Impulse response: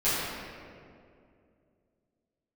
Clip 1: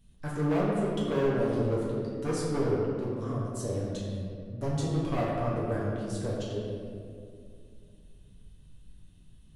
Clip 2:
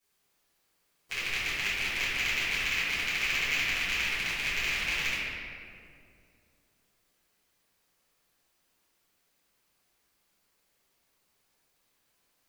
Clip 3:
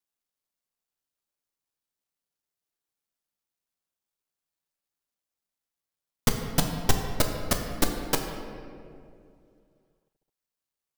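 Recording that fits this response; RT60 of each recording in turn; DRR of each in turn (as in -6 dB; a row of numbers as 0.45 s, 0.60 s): 2; 2.4 s, 2.4 s, 2.5 s; -7.0 dB, -15.5 dB, 2.5 dB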